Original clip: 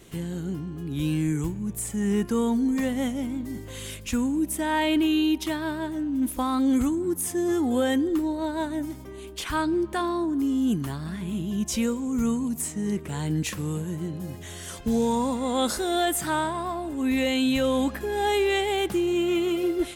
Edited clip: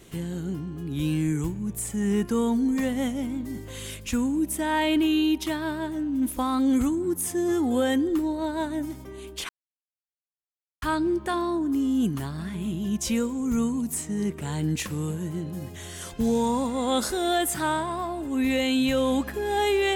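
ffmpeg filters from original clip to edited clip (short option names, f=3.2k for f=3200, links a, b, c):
-filter_complex "[0:a]asplit=2[a][b];[a]atrim=end=9.49,asetpts=PTS-STARTPTS,afade=t=out:st=9.486:d=0.004:c=hsin,apad=pad_dur=1.33[c];[b]atrim=start=9.49,asetpts=PTS-STARTPTS,afade=t=in:d=0.004:c=hsin[d];[c][d]concat=n=2:v=0:a=1"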